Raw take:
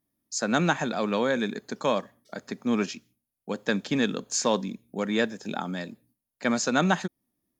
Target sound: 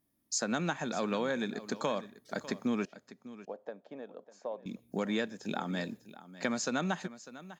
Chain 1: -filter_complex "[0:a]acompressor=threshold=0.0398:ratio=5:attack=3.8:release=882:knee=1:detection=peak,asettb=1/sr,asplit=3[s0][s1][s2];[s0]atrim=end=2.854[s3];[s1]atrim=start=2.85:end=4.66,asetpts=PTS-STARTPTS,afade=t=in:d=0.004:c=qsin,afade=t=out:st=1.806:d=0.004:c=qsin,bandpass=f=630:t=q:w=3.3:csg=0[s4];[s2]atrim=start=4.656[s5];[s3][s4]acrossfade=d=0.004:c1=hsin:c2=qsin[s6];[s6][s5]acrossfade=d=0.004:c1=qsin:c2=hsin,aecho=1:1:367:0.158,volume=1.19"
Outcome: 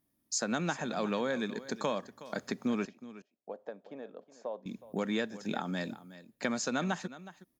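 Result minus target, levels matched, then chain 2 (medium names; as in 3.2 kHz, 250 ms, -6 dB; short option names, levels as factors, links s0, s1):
echo 232 ms early
-filter_complex "[0:a]acompressor=threshold=0.0398:ratio=5:attack=3.8:release=882:knee=1:detection=peak,asettb=1/sr,asplit=3[s0][s1][s2];[s0]atrim=end=2.854[s3];[s1]atrim=start=2.85:end=4.66,asetpts=PTS-STARTPTS,afade=t=in:d=0.004:c=qsin,afade=t=out:st=1.806:d=0.004:c=qsin,bandpass=f=630:t=q:w=3.3:csg=0[s4];[s2]atrim=start=4.656[s5];[s3][s4]acrossfade=d=0.004:c1=hsin:c2=qsin[s6];[s6][s5]acrossfade=d=0.004:c1=qsin:c2=hsin,aecho=1:1:599:0.158,volume=1.19"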